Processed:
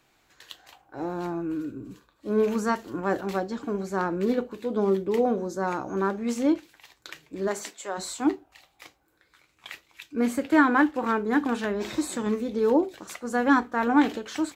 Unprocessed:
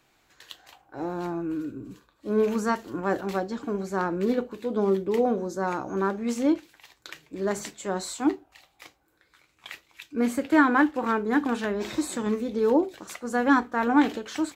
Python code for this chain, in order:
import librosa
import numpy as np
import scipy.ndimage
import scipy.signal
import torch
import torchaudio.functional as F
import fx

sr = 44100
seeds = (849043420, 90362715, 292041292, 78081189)

y = fx.highpass(x, sr, hz=fx.line((7.47, 270.0), (7.97, 580.0)), slope=12, at=(7.47, 7.97), fade=0.02)